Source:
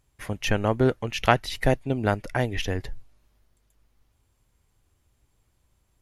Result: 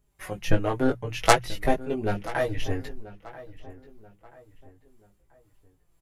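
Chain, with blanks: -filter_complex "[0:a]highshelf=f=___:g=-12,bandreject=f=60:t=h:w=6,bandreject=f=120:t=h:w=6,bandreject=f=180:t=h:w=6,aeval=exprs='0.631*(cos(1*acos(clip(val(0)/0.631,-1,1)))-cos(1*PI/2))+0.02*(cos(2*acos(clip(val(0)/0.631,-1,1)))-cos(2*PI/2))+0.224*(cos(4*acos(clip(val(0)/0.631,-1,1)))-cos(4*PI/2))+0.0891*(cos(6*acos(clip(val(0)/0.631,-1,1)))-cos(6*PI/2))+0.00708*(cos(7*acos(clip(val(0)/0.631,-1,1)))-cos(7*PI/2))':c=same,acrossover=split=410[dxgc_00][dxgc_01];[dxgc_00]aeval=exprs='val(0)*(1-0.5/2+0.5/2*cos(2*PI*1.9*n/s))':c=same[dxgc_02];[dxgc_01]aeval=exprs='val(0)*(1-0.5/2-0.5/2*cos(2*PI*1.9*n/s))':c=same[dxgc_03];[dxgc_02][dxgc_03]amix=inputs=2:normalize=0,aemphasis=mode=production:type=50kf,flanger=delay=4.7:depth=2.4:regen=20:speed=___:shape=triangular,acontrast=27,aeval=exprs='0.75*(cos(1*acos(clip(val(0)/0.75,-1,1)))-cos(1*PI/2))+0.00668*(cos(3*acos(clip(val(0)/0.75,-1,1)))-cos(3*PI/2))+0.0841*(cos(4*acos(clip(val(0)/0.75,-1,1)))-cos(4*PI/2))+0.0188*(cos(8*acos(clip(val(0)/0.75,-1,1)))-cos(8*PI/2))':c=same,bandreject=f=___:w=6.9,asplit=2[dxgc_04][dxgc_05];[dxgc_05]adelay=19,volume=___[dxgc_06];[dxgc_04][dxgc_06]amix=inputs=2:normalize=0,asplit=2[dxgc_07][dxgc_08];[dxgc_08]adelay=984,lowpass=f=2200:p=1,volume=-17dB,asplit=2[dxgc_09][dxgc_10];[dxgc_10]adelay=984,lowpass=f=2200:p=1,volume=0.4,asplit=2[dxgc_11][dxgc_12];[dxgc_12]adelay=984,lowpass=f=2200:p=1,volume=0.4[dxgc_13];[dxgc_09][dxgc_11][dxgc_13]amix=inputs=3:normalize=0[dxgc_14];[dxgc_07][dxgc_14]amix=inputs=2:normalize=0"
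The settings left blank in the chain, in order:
2700, 0.55, 210, -3dB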